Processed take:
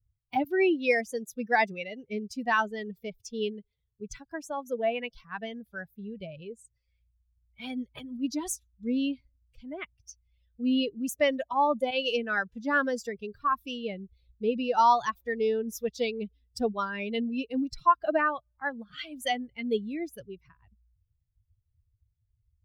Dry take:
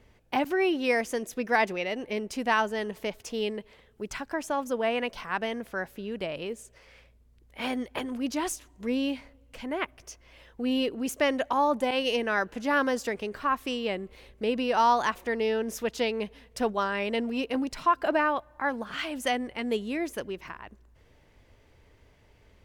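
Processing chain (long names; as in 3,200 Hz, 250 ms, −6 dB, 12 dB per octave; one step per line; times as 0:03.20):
spectral dynamics exaggerated over time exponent 2
level +3.5 dB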